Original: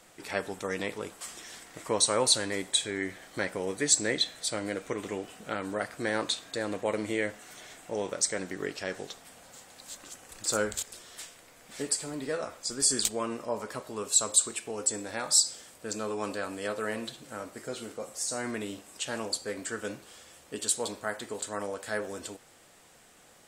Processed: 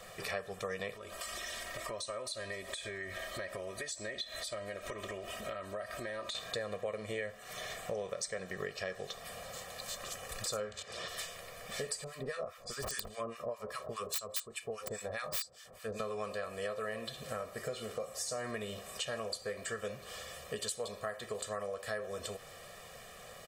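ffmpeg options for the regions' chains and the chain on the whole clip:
ffmpeg -i in.wav -filter_complex "[0:a]asettb=1/sr,asplit=3[link_01][link_02][link_03];[link_01]atrim=end=0.944[link_04];[link_02]atrim=start=0.94:end=6.35,asetpts=PTS-STARTPTS,afade=type=in:duration=0.004:curve=qsin,afade=type=out:start_time=5.406:duration=0.004:curve=qsin,acompressor=threshold=-44dB:ratio=4:attack=3.2:release=140:knee=1:detection=peak,aecho=1:1:3.2:0.72,atrim=end_sample=238581[link_05];[link_03]atrim=start=6.346[link_06];[link_04][link_05]acrossfade=duration=0.004:curve1=hsin:curve2=qsin[link_07];[link_07][link_06]acrossfade=duration=0.004:curve1=qsin:curve2=hsin,asettb=1/sr,asplit=3[link_08][link_09][link_10];[link_08]atrim=end=10.604[link_11];[link_09]atrim=start=10.6:end=11.08,asetpts=PTS-STARTPTS,afade=type=in:duration=0.004:curve=qsin,afade=type=out:start_time=0.476:duration=0.004:curve=qsin,acompressor=mode=upward:threshold=-35dB:ratio=2.5:attack=3.2:release=140:knee=2.83:detection=peak,highpass=100,lowpass=5300[link_12];[link_10]atrim=start=11.076[link_13];[link_11][link_12]acrossfade=duration=0.004:curve1=hsin:curve2=qsin[link_14];[link_14][link_13]acrossfade=duration=0.004:curve1=qsin:curve2=hsin,asettb=1/sr,asplit=3[link_15][link_16][link_17];[link_15]atrim=end=12.044[link_18];[link_16]atrim=start=12.04:end=16,asetpts=PTS-STARTPTS,afade=type=in:duration=0.004:curve=qsin,afade=type=out:start_time=3.956:duration=0.004:curve=qsin,aeval=exprs='(mod(7.08*val(0)+1,2)-1)/7.08':channel_layout=same,acrossover=split=1100[link_19][link_20];[link_19]aeval=exprs='val(0)*(1-1/2+1/2*cos(2*PI*4.9*n/s))':channel_layout=same[link_21];[link_20]aeval=exprs='val(0)*(1-1/2-1/2*cos(2*PI*4.9*n/s))':channel_layout=same[link_22];[link_21][link_22]amix=inputs=2:normalize=0[link_23];[link_17]atrim=start=15.996[link_24];[link_18][link_23]acrossfade=duration=0.004:curve1=hsin:curve2=qsin[link_25];[link_25][link_24]acrossfade=duration=0.004:curve1=qsin:curve2=hsin,equalizer=frequency=7700:width=1.1:gain=-6.5,aecho=1:1:1.7:0.92,acompressor=threshold=-42dB:ratio=5,volume=5dB" out.wav

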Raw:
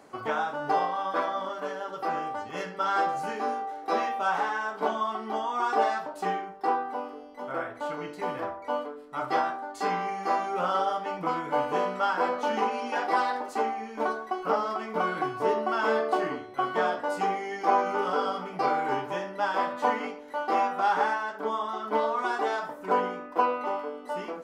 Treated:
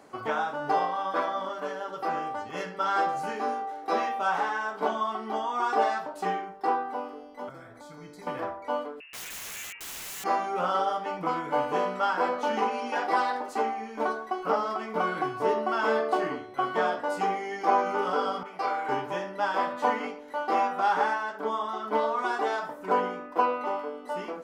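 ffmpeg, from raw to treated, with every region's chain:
ffmpeg -i in.wav -filter_complex "[0:a]asettb=1/sr,asplit=3[link_01][link_02][link_03];[link_01]atrim=end=7.494[link_04];[link_02]atrim=start=7.49:end=8.27,asetpts=PTS-STARTPTS,afade=type=in:duration=0.004:curve=qsin,afade=type=out:start_time=0.776:duration=0.004:curve=qsin,asuperstop=centerf=2800:order=20:qfactor=7.5,equalizer=frequency=2900:width_type=o:width=0.65:gain=-6.5,acrossover=split=210|3000[link_05][link_06][link_07];[link_06]acompressor=threshold=-47dB:ratio=6:attack=3.2:release=140:knee=2.83:detection=peak[link_08];[link_05][link_08][link_07]amix=inputs=3:normalize=0[link_09];[link_03]atrim=start=8.266[link_10];[link_04][link_09]acrossfade=duration=0.004:curve1=hsin:curve2=qsin[link_11];[link_11][link_10]acrossfade=duration=0.004:curve1=qsin:curve2=hsin,asettb=1/sr,asplit=3[link_12][link_13][link_14];[link_12]atrim=end=9.004[link_15];[link_13]atrim=start=9:end=10.24,asetpts=PTS-STARTPTS,afade=type=in:duration=0.004:curve=qsin,afade=type=out:start_time=1.236:duration=0.004:curve=qsin,acompressor=threshold=-29dB:ratio=16:attack=3.2:release=140:knee=1:detection=peak,lowpass=frequency=2600:width_type=q:width=0.5098,lowpass=frequency=2600:width_type=q:width=0.6013,lowpass=frequency=2600:width_type=q:width=0.9,lowpass=frequency=2600:width_type=q:width=2.563,afreqshift=-3100,aeval=exprs='(mod(53.1*val(0)+1,2)-1)/53.1':channel_layout=same[link_16];[link_14]atrim=start=10.236[link_17];[link_15][link_16]acrossfade=duration=0.004:curve1=hsin:curve2=qsin[link_18];[link_18][link_17]acrossfade=duration=0.004:curve1=qsin:curve2=hsin,asettb=1/sr,asplit=3[link_19][link_20][link_21];[link_19]atrim=end=18.434[link_22];[link_20]atrim=start=18.43:end=18.89,asetpts=PTS-STARTPTS,afade=type=in:duration=0.004:curve=qsin,afade=type=out:start_time=0.456:duration=0.004:curve=qsin,highpass=frequency=800:poles=1,adynamicequalizer=threshold=0.00447:dfrequency=2500:dqfactor=0.7:tfrequency=2500:tqfactor=0.7:attack=5:release=100:ratio=0.375:range=2.5:mode=cutabove:tftype=highshelf[link_23];[link_21]atrim=start=18.886[link_24];[link_22][link_23]acrossfade=duration=0.004:curve1=hsin:curve2=qsin[link_25];[link_25][link_24]acrossfade=duration=0.004:curve1=qsin:curve2=hsin" out.wav

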